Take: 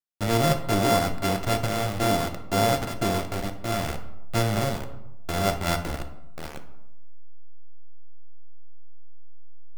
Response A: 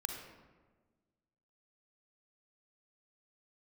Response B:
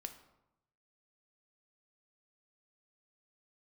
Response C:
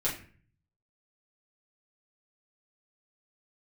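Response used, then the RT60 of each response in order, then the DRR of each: B; 1.4, 0.90, 0.45 s; 3.0, 6.5, -7.5 dB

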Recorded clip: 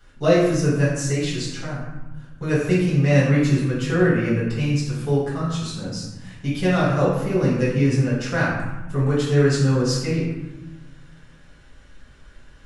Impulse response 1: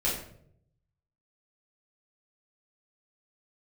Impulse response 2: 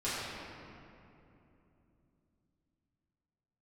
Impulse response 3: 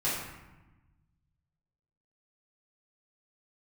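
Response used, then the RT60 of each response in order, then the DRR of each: 3; 0.65, 2.9, 1.1 s; -8.0, -12.0, -9.5 dB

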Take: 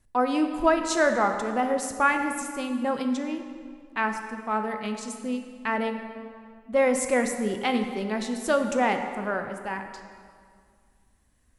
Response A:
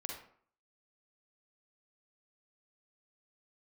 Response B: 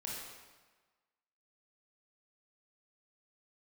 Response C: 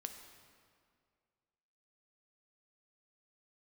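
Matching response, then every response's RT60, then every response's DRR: C; 0.55, 1.3, 2.1 s; 0.0, -4.5, 5.5 dB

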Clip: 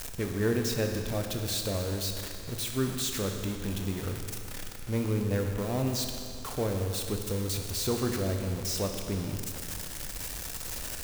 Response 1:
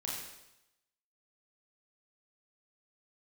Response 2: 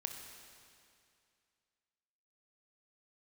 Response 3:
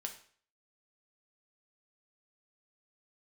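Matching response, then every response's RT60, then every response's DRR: 2; 0.90, 2.4, 0.50 s; -4.5, 3.5, 3.0 dB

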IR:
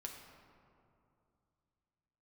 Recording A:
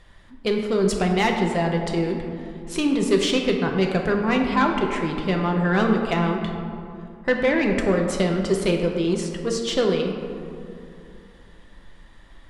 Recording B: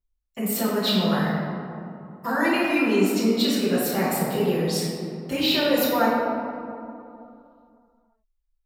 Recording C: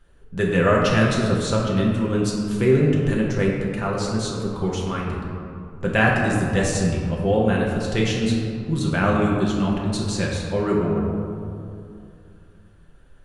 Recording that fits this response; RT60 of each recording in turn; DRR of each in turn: A; 2.6, 2.6, 2.6 s; 1.0, -11.5, -3.5 dB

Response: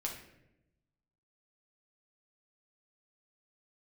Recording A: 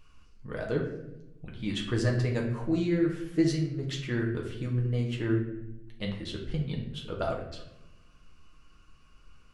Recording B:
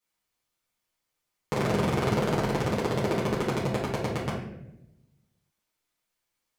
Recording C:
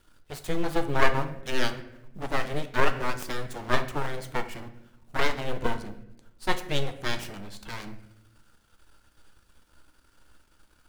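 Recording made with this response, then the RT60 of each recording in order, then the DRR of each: A; 0.85, 0.85, 0.90 s; -1.5, -8.0, 7.0 dB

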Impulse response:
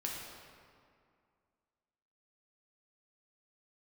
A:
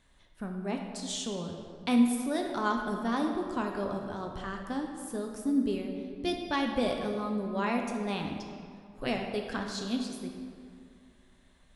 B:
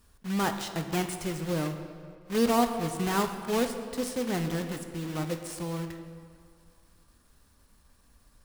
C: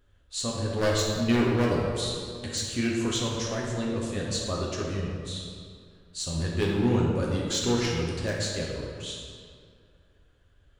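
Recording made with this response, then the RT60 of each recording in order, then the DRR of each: C; 2.2, 2.2, 2.2 s; 2.0, 6.5, -3.0 dB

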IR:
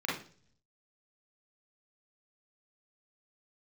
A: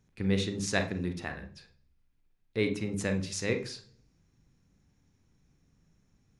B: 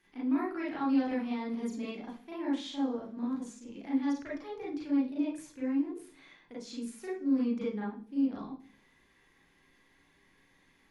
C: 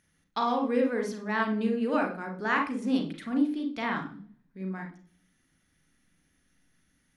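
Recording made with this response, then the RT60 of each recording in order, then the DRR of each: B; 0.45, 0.45, 0.45 s; 6.5, -6.5, 2.5 dB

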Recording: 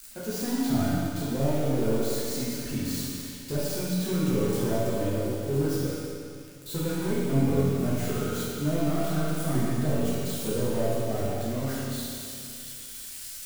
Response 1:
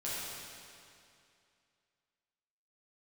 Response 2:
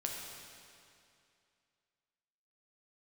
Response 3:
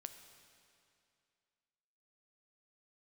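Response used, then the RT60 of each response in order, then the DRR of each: 1; 2.5, 2.5, 2.5 s; -9.5, -1.0, 7.5 dB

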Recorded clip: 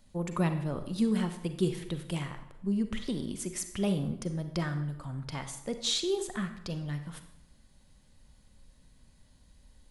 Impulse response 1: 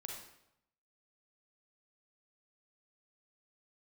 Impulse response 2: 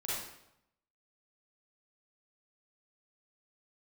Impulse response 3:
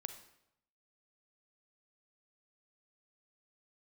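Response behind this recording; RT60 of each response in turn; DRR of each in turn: 3; 0.80, 0.80, 0.80 s; -0.5, -9.0, 8.5 dB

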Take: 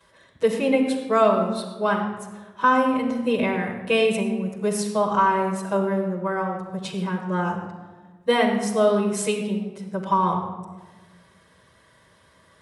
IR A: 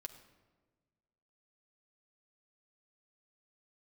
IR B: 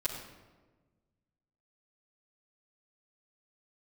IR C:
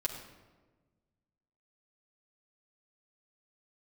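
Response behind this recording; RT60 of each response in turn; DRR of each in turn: B; 1.3, 1.3, 1.3 s; 4.0, -10.0, -3.0 dB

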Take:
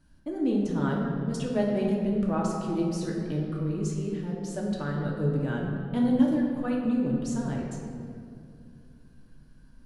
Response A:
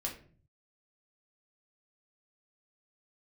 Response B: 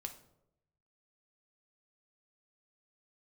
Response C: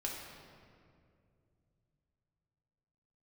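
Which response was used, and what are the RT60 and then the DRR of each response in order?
C; 0.45, 0.80, 2.4 s; -1.5, 4.0, -3.0 dB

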